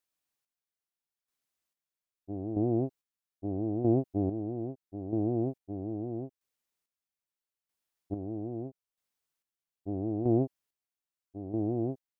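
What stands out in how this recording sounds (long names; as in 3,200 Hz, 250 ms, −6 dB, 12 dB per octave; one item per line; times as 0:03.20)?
chopped level 0.78 Hz, depth 60%, duty 35%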